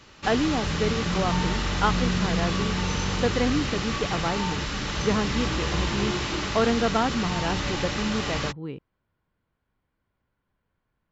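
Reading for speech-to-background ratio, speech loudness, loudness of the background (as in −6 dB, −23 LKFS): −1.0 dB, −28.5 LKFS, −27.5 LKFS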